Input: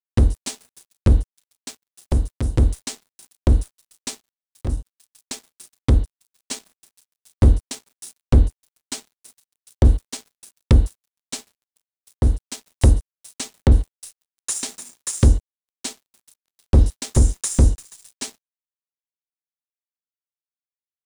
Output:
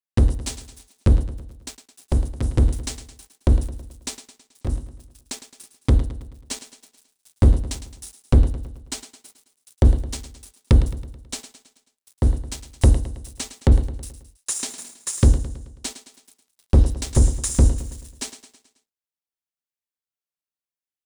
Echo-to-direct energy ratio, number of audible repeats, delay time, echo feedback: -11.0 dB, 4, 108 ms, 51%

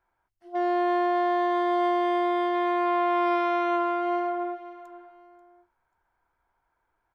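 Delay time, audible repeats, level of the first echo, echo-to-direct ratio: 537 ms, 2, -17.0 dB, -16.5 dB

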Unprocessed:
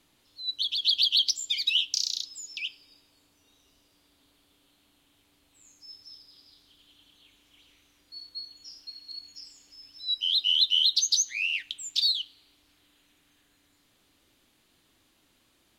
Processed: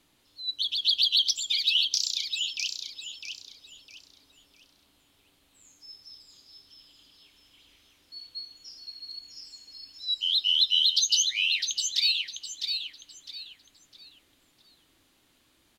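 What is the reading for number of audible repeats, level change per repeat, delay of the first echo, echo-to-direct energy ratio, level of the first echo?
3, -10.5 dB, 656 ms, -5.5 dB, -6.0 dB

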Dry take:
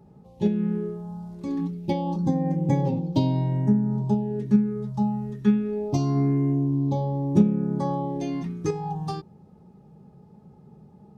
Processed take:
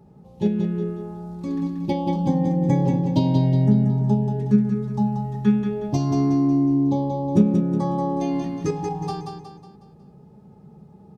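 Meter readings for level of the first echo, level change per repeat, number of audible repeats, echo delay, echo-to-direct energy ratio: -5.5 dB, -7.0 dB, 5, 183 ms, -4.5 dB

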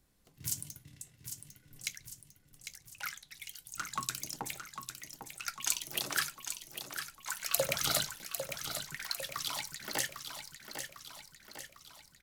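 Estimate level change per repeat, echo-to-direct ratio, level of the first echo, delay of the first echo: -5.5 dB, -6.5 dB, -8.0 dB, 801 ms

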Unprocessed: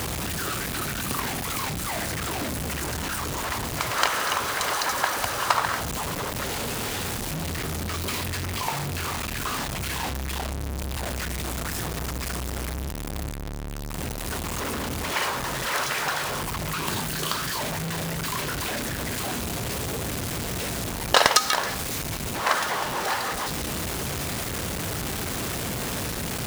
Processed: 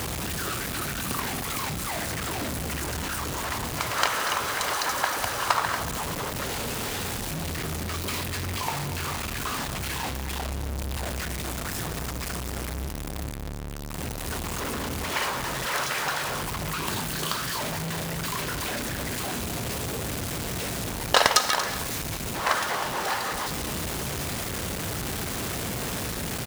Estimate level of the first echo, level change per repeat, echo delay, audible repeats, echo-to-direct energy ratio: -12.5 dB, no regular repeats, 234 ms, 1, -12.5 dB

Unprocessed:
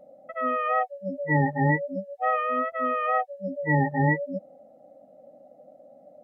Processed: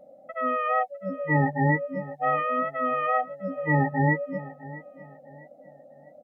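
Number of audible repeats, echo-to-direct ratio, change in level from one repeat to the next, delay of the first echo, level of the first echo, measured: 2, -17.0 dB, -9.5 dB, 653 ms, -17.5 dB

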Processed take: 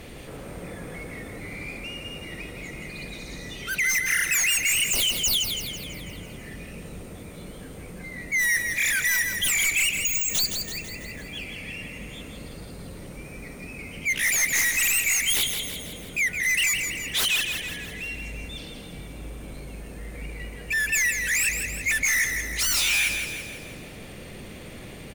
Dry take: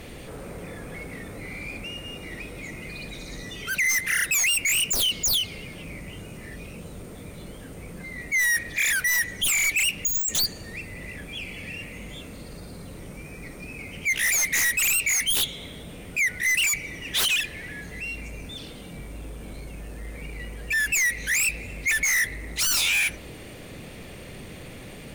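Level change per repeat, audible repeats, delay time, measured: -5.5 dB, 6, 165 ms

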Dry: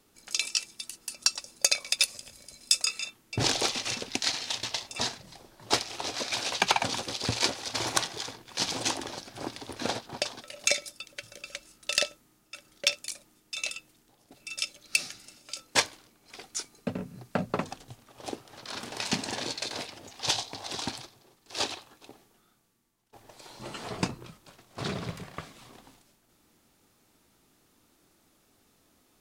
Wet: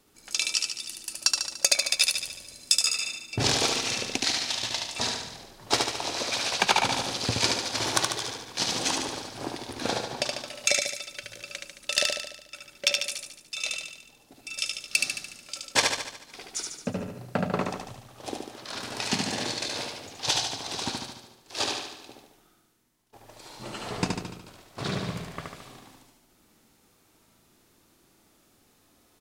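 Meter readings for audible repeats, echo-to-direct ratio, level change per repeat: 7, -2.0 dB, -5.0 dB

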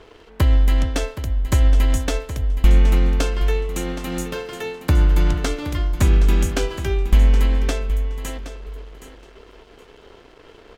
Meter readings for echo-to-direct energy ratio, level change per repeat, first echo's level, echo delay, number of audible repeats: -12.5 dB, -15.5 dB, -12.5 dB, 770 ms, 2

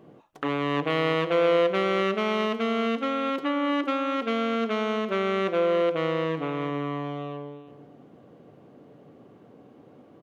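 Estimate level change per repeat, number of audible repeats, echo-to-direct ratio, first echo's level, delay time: no regular repeats, 1, -13.0 dB, -13.0 dB, 342 ms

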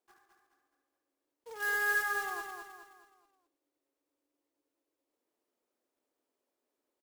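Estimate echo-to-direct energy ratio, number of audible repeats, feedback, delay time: -4.0 dB, 5, 43%, 211 ms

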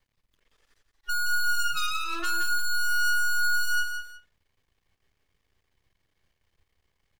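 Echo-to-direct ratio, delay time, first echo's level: -6.5 dB, 175 ms, -7.0 dB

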